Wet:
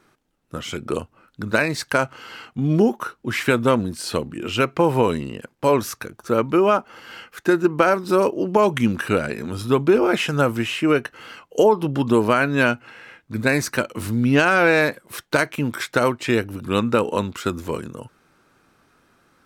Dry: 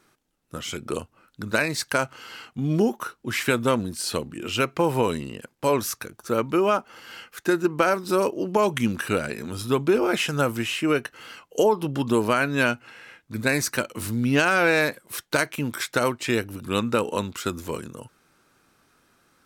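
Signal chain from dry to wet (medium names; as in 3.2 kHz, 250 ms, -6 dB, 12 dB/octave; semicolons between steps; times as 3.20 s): treble shelf 3.7 kHz -8 dB; trim +4.5 dB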